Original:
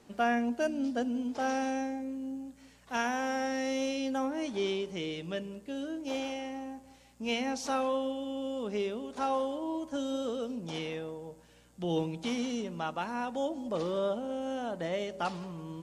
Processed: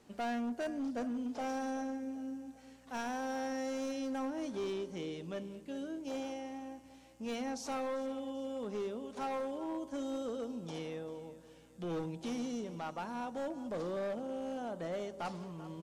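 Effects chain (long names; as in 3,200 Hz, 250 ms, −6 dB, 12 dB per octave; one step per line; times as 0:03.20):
dynamic equaliser 2,700 Hz, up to −7 dB, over −52 dBFS, Q 1.1
repeating echo 392 ms, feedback 50%, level −17 dB
hard clipping −29.5 dBFS, distortion −14 dB
level −4 dB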